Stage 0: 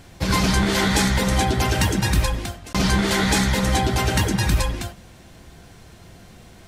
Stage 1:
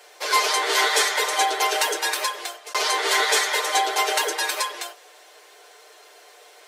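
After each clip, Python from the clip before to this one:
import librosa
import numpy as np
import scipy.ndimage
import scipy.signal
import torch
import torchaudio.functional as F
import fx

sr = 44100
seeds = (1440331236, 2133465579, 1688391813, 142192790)

y = scipy.signal.sosfilt(scipy.signal.butter(12, 380.0, 'highpass', fs=sr, output='sos'), x)
y = y + 0.8 * np.pad(y, (int(6.7 * sr / 1000.0), 0))[:len(y)]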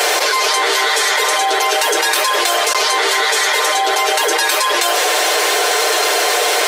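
y = fx.env_flatten(x, sr, amount_pct=100)
y = F.gain(torch.from_numpy(y), 1.0).numpy()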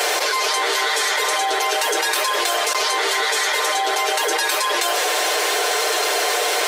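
y = x + 10.0 ** (-17.0 / 20.0) * np.pad(x, (int(559 * sr / 1000.0), 0))[:len(x)]
y = F.gain(torch.from_numpy(y), -5.0).numpy()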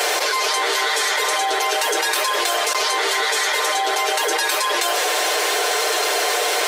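y = x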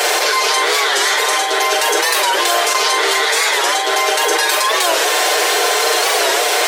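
y = fx.doubler(x, sr, ms=43.0, db=-6.0)
y = fx.record_warp(y, sr, rpm=45.0, depth_cents=160.0)
y = F.gain(torch.from_numpy(y), 4.0).numpy()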